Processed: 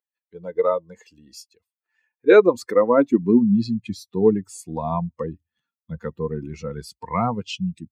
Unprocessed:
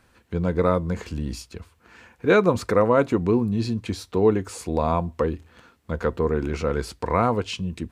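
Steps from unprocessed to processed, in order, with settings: per-bin expansion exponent 2; high-pass sweep 480 Hz -> 160 Hz, 1.97–3.83; gain +2.5 dB

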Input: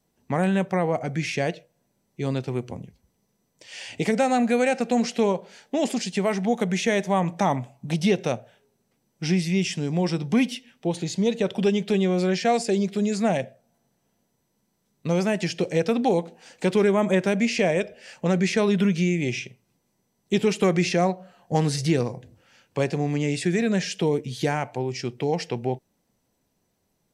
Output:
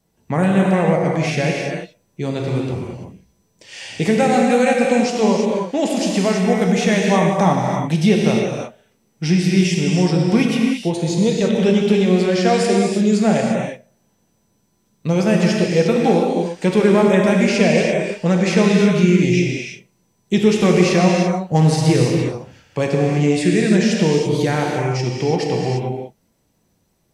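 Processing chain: low shelf 160 Hz +4.5 dB; non-linear reverb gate 0.37 s flat, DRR -1.5 dB; gain +3 dB

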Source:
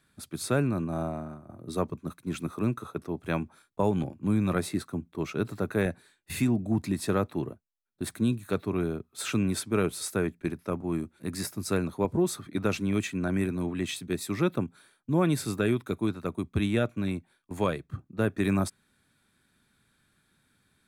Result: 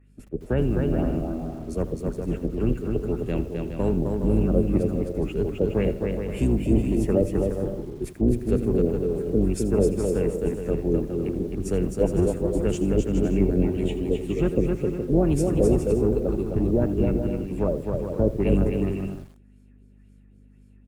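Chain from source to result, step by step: octaver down 2 oct, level -2 dB; EQ curve 420 Hz 0 dB, 980 Hz -16 dB, 1600 Hz -15 dB, 2400 Hz -8 dB, 3900 Hz -24 dB, 6600 Hz +6 dB; hum 50 Hz, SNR 31 dB; in parallel at -3.5 dB: soft clip -22.5 dBFS, distortion -13 dB; on the sum: LFO low-pass sine 1.9 Hz 450–4500 Hz; on a send: bouncing-ball echo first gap 0.26 s, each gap 0.6×, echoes 5; on the sum: formant shift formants +2 st; lo-fi delay 82 ms, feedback 35%, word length 7-bit, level -14.5 dB; gain -1 dB

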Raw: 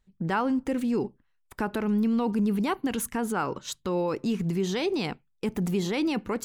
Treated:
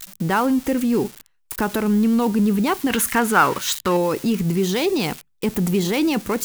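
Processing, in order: switching spikes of -29.5 dBFS; 2.9–3.97 bell 1700 Hz +9.5 dB 2.1 oct; gain +7 dB

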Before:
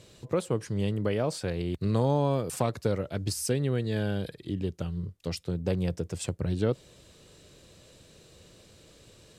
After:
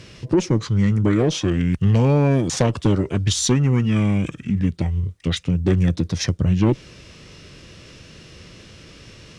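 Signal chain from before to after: added harmonics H 4 -24 dB, 5 -15 dB, 7 -26 dB, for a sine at -12 dBFS; formant shift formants -6 st; gain +8 dB

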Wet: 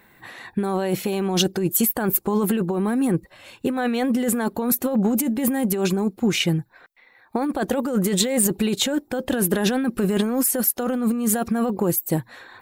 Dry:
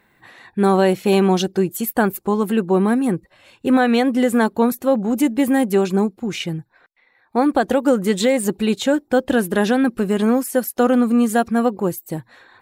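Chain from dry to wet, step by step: high shelf 12000 Hz +10.5 dB; negative-ratio compressor -21 dBFS, ratio -1

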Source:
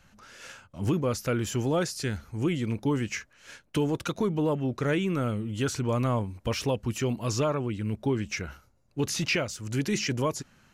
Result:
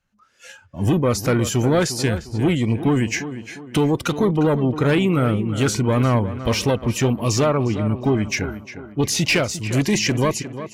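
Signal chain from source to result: one-sided clip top -25 dBFS; spectral noise reduction 16 dB; AGC gain up to 9.5 dB; on a send: tape echo 0.354 s, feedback 45%, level -10 dB, low-pass 2500 Hz

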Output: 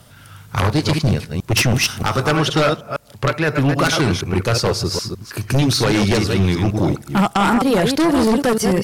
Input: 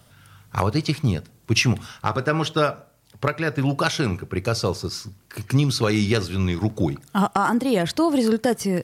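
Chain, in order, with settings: reverse delay 0.156 s, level -6 dB; 1.74–2.37 high shelf 5300 Hz +9 dB; sine folder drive 11 dB, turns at -3.5 dBFS; gain -7.5 dB

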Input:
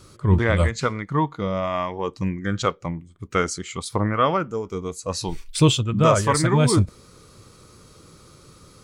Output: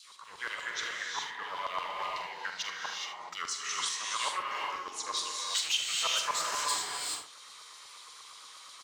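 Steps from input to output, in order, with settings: dynamic EQ 1600 Hz, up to -5 dB, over -35 dBFS, Q 0.96; in parallel at +1 dB: compressor, threshold -30 dBFS, peak gain reduction 18 dB; on the sum: limiter -10 dBFS, peak gain reduction 6 dB; hard clip -17 dBFS, distortion -12 dB; vibrato 7.5 Hz 83 cents; formant shift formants -2 st; LFO high-pass saw down 8.4 Hz 890–4500 Hz; on a send: early reflections 45 ms -10 dB, 76 ms -11.5 dB; on the sum: non-linear reverb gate 0.45 s rising, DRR -1 dB; gain -9 dB

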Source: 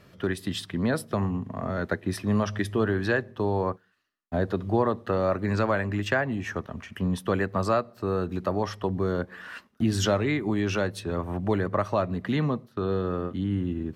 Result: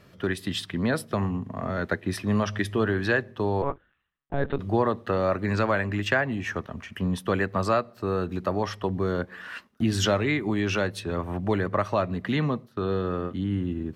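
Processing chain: 3.62–4.59 monotone LPC vocoder at 8 kHz 140 Hz; dynamic EQ 2500 Hz, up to +4 dB, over -44 dBFS, Q 0.83

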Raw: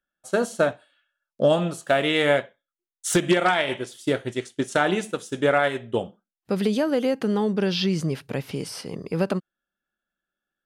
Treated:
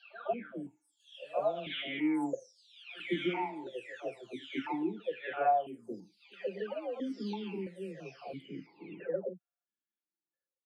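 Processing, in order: spectral delay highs early, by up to 0.899 s; pre-echo 0.151 s -21.5 dB; vowel sequencer 3 Hz; gain +1.5 dB

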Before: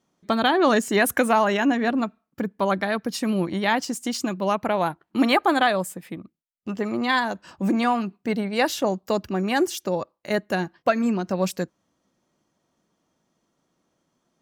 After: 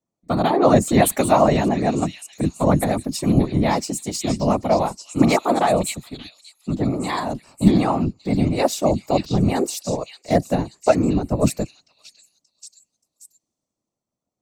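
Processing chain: thirty-one-band EQ 200 Hz +10 dB, 630 Hz +7 dB, 1600 Hz -12 dB, 3150 Hz -9 dB, 8000 Hz +8 dB; whisperiser; delay with a stepping band-pass 0.579 s, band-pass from 3600 Hz, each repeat 0.7 oct, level -2 dB; three-band expander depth 40%

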